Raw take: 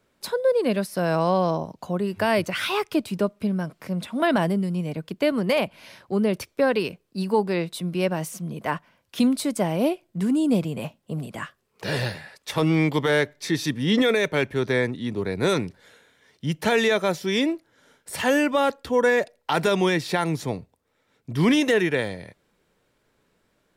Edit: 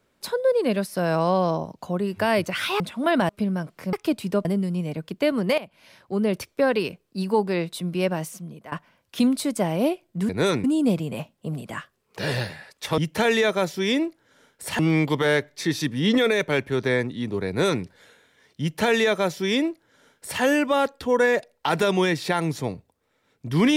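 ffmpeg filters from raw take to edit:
ffmpeg -i in.wav -filter_complex "[0:a]asplit=11[link_01][link_02][link_03][link_04][link_05][link_06][link_07][link_08][link_09][link_10][link_11];[link_01]atrim=end=2.802[link_12];[link_02]atrim=start=3.958:end=4.452[link_13];[link_03]atrim=start=3.318:end=3.962[link_14];[link_04]atrim=start=2.798:end=3.322[link_15];[link_05]atrim=start=4.448:end=5.58,asetpts=PTS-STARTPTS,afade=type=out:start_time=1.128:duration=0.004:curve=hsin:silence=0.149624[link_16];[link_06]atrim=start=5.58:end=8.72,asetpts=PTS-STARTPTS,afade=type=in:duration=0.74:silence=0.149624,afade=type=out:start_time=2.57:duration=0.57:silence=0.125893[link_17];[link_07]atrim=start=8.72:end=10.292,asetpts=PTS-STARTPTS,afade=type=in:duration=0.004:curve=hsin:silence=0.125893[link_18];[link_08]atrim=start=15.318:end=15.672[link_19];[link_09]atrim=start=10.288:end=12.632[link_20];[link_10]atrim=start=16.448:end=18.262[link_21];[link_11]atrim=start=12.628[link_22];[link_12][link_13]acrossfade=duration=0.004:curve1=hsin:curve2=hsin[link_23];[link_23][link_14]acrossfade=duration=0.004:curve1=hsin:curve2=hsin[link_24];[link_24][link_15]acrossfade=duration=0.004:curve1=hsin:curve2=hsin[link_25];[link_16][link_17][link_18]concat=n=3:v=0:a=1[link_26];[link_25][link_26]acrossfade=duration=0.004:curve1=hsin:curve2=hsin[link_27];[link_27][link_19]acrossfade=duration=0.004:curve1=hsin:curve2=hsin[link_28];[link_28][link_20]acrossfade=duration=0.004:curve1=hsin:curve2=hsin[link_29];[link_29][link_21]acrossfade=duration=0.004:curve1=hsin:curve2=hsin[link_30];[link_30][link_22]acrossfade=duration=0.004:curve1=hsin:curve2=hsin" out.wav

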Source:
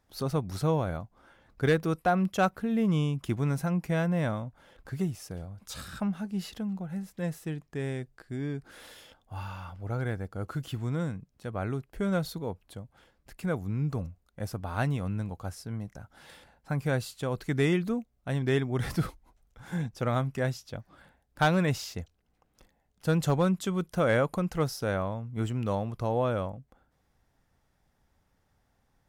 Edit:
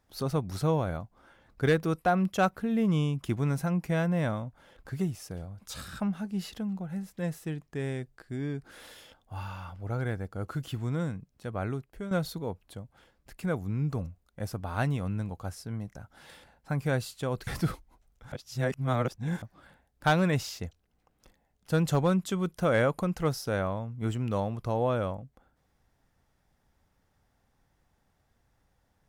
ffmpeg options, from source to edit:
ffmpeg -i in.wav -filter_complex "[0:a]asplit=5[link_01][link_02][link_03][link_04][link_05];[link_01]atrim=end=12.11,asetpts=PTS-STARTPTS,afade=type=out:start_time=11.66:duration=0.45:silence=0.298538[link_06];[link_02]atrim=start=12.11:end=17.472,asetpts=PTS-STARTPTS,afade=type=in:duration=0.004:curve=hsin:silence=0.298538[link_07];[link_03]atrim=start=18.818:end=19.672[link_08];[link_04]atrim=start=19.668:end=20.772,asetpts=PTS-STARTPTS,areverse[link_09];[link_05]atrim=start=20.768[link_10];[link_06][link_07]concat=n=2:v=0:a=1[link_11];[link_11][link_08]acrossfade=duration=0.004:curve1=hsin:curve2=hsin[link_12];[link_12][link_09]acrossfade=duration=0.004:curve1=hsin:curve2=hsin[link_13];[link_13][link_10]acrossfade=duration=0.004:curve1=hsin:curve2=hsin" out.wav

